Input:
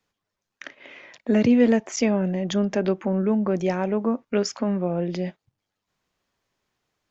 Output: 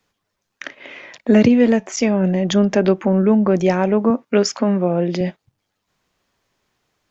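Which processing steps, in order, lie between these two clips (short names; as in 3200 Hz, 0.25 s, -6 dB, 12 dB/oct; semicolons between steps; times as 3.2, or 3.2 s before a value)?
1.48–2.24 resonator 190 Hz, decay 0.18 s, harmonics all, mix 40%; 4.1–5.21 HPF 140 Hz; gain +7.5 dB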